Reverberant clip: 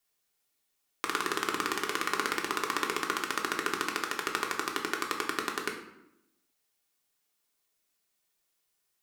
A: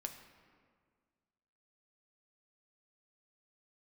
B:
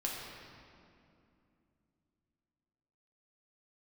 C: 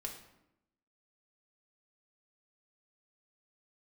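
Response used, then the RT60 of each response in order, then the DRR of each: C; 1.8, 2.6, 0.85 s; 4.5, -3.5, 0.5 dB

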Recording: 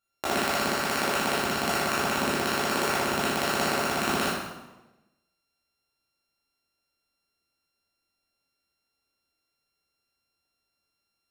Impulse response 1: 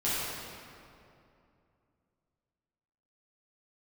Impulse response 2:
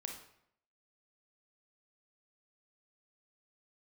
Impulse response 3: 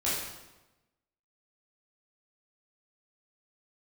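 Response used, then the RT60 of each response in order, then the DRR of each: 3; 2.6, 0.70, 1.1 s; -11.0, 2.0, -9.0 dB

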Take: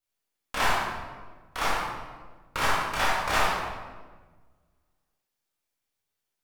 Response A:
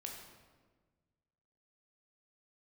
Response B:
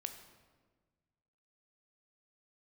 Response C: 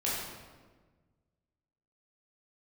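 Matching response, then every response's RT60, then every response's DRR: C; 1.4, 1.4, 1.4 s; 0.0, 6.5, -7.5 dB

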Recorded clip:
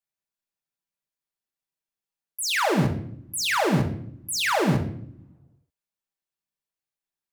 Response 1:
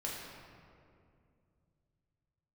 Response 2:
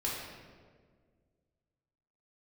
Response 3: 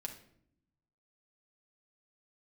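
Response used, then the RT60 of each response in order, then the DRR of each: 3; 2.4, 1.7, 0.70 s; -4.5, -6.0, 1.5 dB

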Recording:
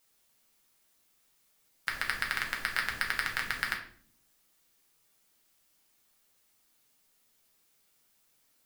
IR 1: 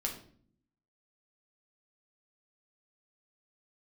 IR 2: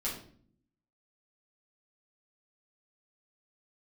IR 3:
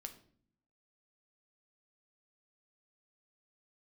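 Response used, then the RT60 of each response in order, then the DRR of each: 1; 0.50, 0.50, 0.55 s; -0.5, -8.0, 5.5 dB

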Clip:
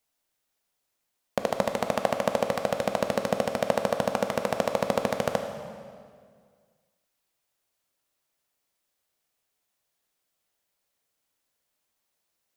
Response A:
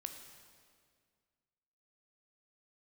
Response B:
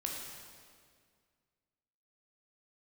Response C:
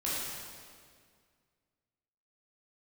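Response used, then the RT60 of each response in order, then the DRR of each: A; 2.0, 2.0, 2.0 s; 5.5, -1.0, -8.5 dB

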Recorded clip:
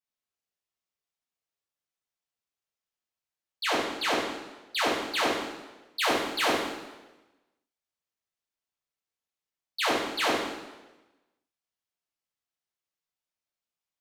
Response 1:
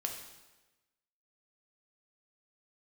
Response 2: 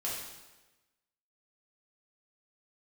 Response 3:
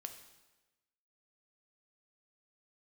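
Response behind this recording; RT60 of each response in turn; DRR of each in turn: 2; 1.1, 1.1, 1.1 s; 1.5, -7.0, 6.0 dB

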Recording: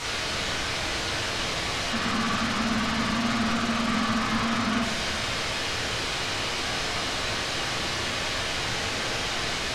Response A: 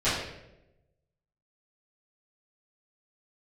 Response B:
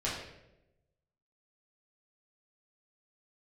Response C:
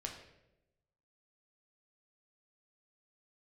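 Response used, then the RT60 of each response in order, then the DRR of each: B; 0.90, 0.90, 0.90 s; -15.5, -7.5, 1.0 dB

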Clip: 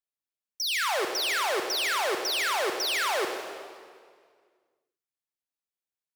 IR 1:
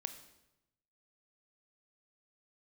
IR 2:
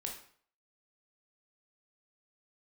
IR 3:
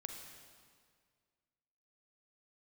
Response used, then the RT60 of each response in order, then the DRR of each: 3; 0.90, 0.55, 1.9 s; 8.5, 0.5, 3.5 dB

